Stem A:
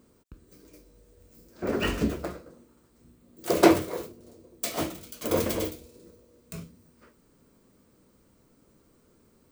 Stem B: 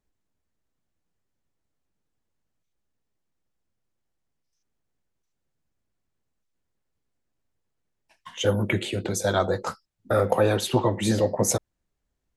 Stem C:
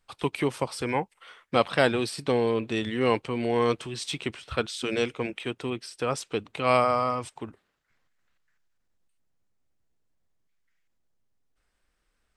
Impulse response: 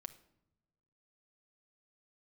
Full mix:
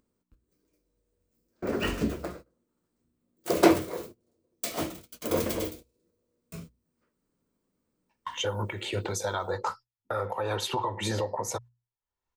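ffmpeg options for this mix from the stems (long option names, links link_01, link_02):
-filter_complex "[0:a]aeval=exprs='val(0)+0.000794*(sin(2*PI*60*n/s)+sin(2*PI*2*60*n/s)/2+sin(2*PI*3*60*n/s)/3+sin(2*PI*4*60*n/s)/4+sin(2*PI*5*60*n/s)/5)':channel_layout=same,volume=-2.5dB,asplit=2[link_01][link_02];[link_02]volume=-16.5dB[link_03];[1:a]lowshelf=frequency=400:gain=-9,aecho=1:1:2.2:0.31,acompressor=threshold=-25dB:ratio=6,volume=1dB,equalizer=frequency=100:width_type=o:width=0.67:gain=6,equalizer=frequency=1000:width_type=o:width=0.67:gain=10,equalizer=frequency=10000:width_type=o:width=0.67:gain=-7,alimiter=limit=-19.5dB:level=0:latency=1:release=279,volume=0dB[link_04];[3:a]atrim=start_sample=2205[link_05];[link_03][link_05]afir=irnorm=-1:irlink=0[link_06];[link_01][link_04][link_06]amix=inputs=3:normalize=0,acompressor=mode=upward:threshold=-47dB:ratio=2.5,agate=range=-21dB:threshold=-44dB:ratio=16:detection=peak,bandreject=frequency=60:width_type=h:width=6,bandreject=frequency=120:width_type=h:width=6"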